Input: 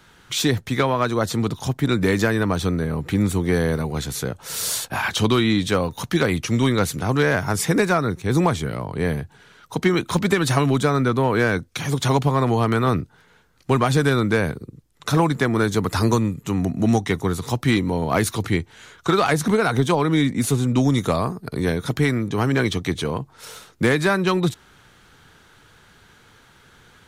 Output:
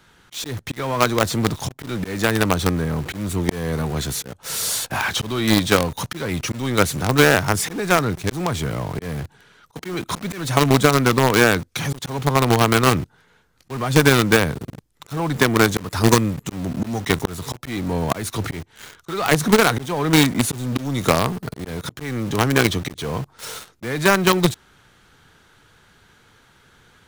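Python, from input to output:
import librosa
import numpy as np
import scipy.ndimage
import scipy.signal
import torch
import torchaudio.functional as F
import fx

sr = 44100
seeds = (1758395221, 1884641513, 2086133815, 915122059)

p1 = fx.auto_swell(x, sr, attack_ms=306.0)
p2 = fx.quant_companded(p1, sr, bits=2)
p3 = p1 + F.gain(torch.from_numpy(p2), -4.5).numpy()
y = F.gain(torch.from_numpy(p3), -2.0).numpy()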